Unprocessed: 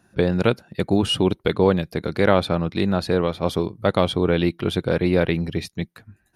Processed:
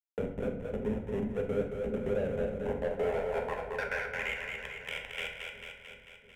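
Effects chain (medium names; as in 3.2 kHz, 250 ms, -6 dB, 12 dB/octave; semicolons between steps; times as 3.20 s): resonances exaggerated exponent 2; Doppler pass-by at 2.27 s, 27 m/s, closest 28 m; spectral gate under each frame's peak -25 dB strong; peaking EQ 480 Hz +10 dB 1.1 oct; in parallel at -3 dB: compression 20:1, threshold -23 dBFS, peak gain reduction 19.5 dB; on the sum: Schmitt trigger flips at -12 dBFS; band-pass sweep 300 Hz -> 3.1 kHz, 2.39–4.50 s; static phaser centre 1.2 kHz, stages 6; saturation -25.5 dBFS, distortion -18 dB; two-band feedback delay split 400 Hz, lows 348 ms, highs 222 ms, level -6 dB; on a send at -2 dB: reverberation RT60 0.50 s, pre-delay 5 ms; on the sum: three bands compressed up and down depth 40%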